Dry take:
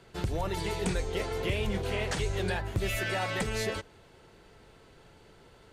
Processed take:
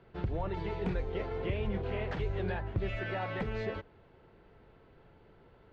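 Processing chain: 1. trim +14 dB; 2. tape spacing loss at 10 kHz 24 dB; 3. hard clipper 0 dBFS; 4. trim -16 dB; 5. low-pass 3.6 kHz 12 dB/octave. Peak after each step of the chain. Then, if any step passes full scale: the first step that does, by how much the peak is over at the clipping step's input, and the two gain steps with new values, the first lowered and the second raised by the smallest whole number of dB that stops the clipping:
-4.5 dBFS, -6.0 dBFS, -6.0 dBFS, -22.0 dBFS, -22.0 dBFS; nothing clips

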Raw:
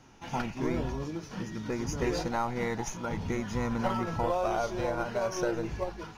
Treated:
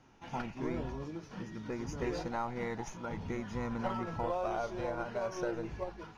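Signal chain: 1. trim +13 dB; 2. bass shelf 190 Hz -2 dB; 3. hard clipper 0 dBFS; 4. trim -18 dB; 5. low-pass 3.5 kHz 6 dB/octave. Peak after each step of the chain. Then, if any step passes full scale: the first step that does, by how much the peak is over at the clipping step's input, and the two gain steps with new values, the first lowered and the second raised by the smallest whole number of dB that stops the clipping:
-4.0 dBFS, -4.5 dBFS, -4.5 dBFS, -22.5 dBFS, -23.0 dBFS; nothing clips

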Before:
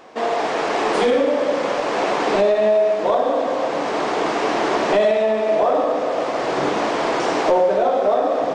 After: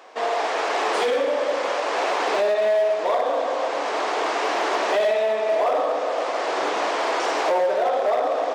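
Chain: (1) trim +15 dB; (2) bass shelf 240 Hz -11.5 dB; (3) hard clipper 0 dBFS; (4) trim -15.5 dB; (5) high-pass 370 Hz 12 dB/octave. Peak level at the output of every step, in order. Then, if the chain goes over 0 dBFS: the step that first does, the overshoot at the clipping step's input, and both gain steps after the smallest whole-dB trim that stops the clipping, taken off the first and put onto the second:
+7.5 dBFS, +7.0 dBFS, 0.0 dBFS, -15.5 dBFS, -11.5 dBFS; step 1, 7.0 dB; step 1 +8 dB, step 4 -8.5 dB

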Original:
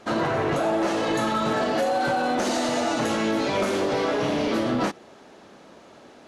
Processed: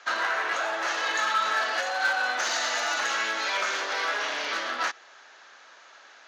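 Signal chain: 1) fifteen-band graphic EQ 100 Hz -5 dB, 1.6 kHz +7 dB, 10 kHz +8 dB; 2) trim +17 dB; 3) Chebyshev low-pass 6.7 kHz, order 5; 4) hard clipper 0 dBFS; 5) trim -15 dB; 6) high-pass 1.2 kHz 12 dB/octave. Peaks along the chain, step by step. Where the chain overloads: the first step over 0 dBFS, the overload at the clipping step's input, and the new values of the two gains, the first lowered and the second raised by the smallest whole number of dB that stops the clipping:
-12.0 dBFS, +5.0 dBFS, +4.0 dBFS, 0.0 dBFS, -15.0 dBFS, -14.0 dBFS; step 2, 4.0 dB; step 2 +13 dB, step 5 -11 dB

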